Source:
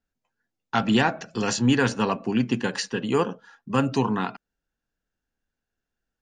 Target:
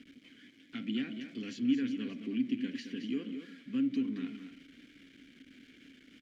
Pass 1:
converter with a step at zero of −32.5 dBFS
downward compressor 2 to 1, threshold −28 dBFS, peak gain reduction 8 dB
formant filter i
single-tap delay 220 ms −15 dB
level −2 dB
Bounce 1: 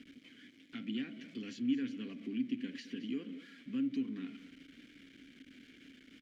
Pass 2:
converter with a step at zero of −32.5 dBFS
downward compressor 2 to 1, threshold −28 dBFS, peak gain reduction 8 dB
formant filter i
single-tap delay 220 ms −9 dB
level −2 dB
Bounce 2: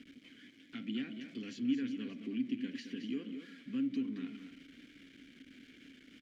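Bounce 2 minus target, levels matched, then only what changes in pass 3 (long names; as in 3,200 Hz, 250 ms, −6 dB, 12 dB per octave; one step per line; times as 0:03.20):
downward compressor: peak gain reduction +4 dB
change: downward compressor 2 to 1, threshold −20.5 dBFS, peak gain reduction 4 dB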